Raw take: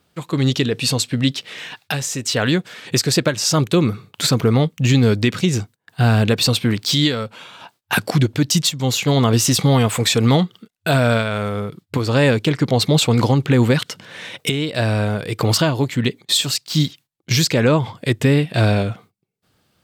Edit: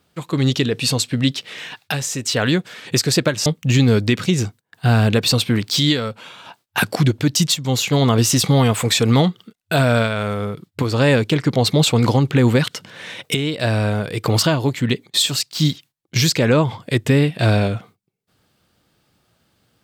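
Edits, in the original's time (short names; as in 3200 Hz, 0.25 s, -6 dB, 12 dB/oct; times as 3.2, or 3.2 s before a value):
3.46–4.61 cut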